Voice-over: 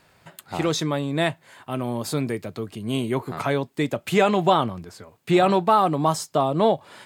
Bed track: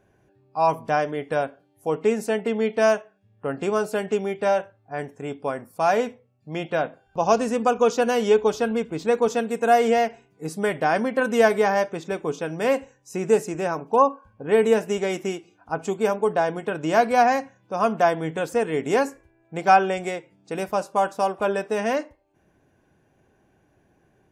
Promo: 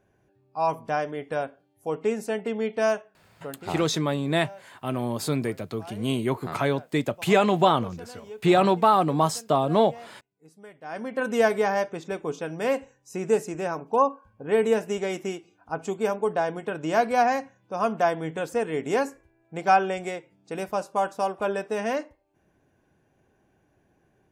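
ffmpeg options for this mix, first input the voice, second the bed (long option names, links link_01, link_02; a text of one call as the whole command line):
ffmpeg -i stem1.wav -i stem2.wav -filter_complex "[0:a]adelay=3150,volume=-1dB[link_01];[1:a]volume=15dB,afade=type=out:start_time=3.24:duration=0.5:silence=0.11885,afade=type=in:start_time=10.82:duration=0.48:silence=0.105925[link_02];[link_01][link_02]amix=inputs=2:normalize=0" out.wav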